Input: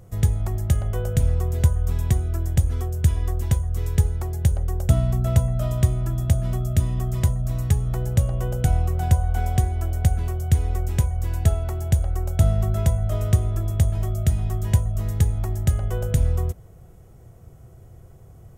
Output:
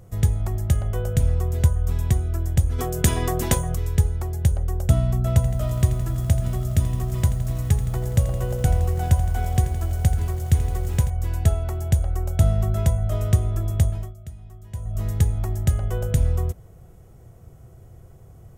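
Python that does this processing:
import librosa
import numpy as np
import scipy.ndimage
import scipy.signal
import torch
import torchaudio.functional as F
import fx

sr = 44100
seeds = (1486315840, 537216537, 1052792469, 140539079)

y = fx.spec_clip(x, sr, under_db=18, at=(2.78, 3.74), fade=0.02)
y = fx.echo_crushed(y, sr, ms=83, feedback_pct=80, bits=7, wet_db=-12.5, at=(5.34, 11.1))
y = fx.edit(y, sr, fx.fade_down_up(start_s=13.85, length_s=1.17, db=-17.5, fade_s=0.29), tone=tone)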